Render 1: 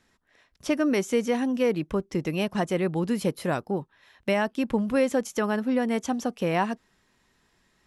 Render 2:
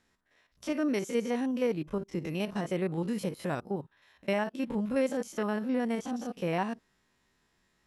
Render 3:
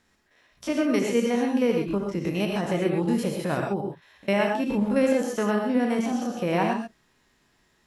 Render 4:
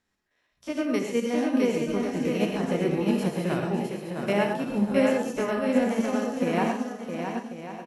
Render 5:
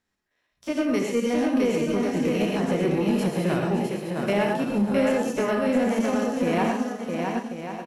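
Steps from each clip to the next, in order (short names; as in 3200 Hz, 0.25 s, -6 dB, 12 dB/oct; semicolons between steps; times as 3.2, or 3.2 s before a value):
stepped spectrum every 50 ms; gain -4.5 dB
non-linear reverb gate 0.15 s rising, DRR 1.5 dB; gain +5 dB
bouncing-ball echo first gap 0.66 s, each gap 0.65×, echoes 5; flange 0.42 Hz, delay 9.3 ms, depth 8.7 ms, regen +84%; upward expander 1.5:1, over -43 dBFS; gain +4 dB
in parallel at +2.5 dB: limiter -18.5 dBFS, peak gain reduction 8.5 dB; on the sum: sample leveller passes 1; gain -7 dB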